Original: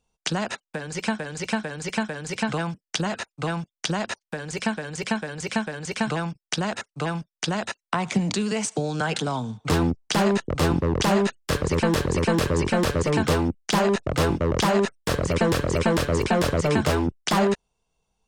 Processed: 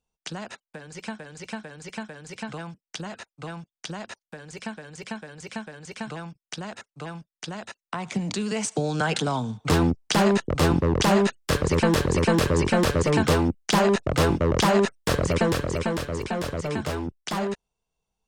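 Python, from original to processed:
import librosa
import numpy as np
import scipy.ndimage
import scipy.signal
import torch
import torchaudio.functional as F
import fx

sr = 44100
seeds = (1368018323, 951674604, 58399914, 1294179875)

y = fx.gain(x, sr, db=fx.line((7.67, -9.0), (8.88, 1.0), (15.23, 1.0), (16.1, -7.0)))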